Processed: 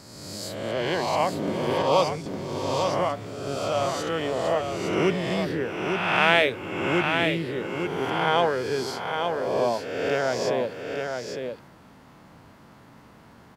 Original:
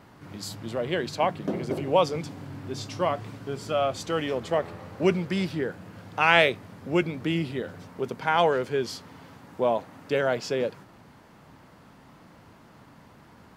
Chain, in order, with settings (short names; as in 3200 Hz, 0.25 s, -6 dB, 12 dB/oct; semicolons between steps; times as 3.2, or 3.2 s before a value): spectral swells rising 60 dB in 1.43 s; echo 0.859 s -5.5 dB; 1.82–2.26 three-band expander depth 70%; gain -2.5 dB